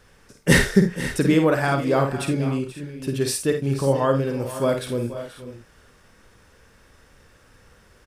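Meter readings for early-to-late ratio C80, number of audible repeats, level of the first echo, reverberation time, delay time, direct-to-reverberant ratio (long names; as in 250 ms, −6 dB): no reverb audible, 3, −6.5 dB, no reverb audible, 51 ms, no reverb audible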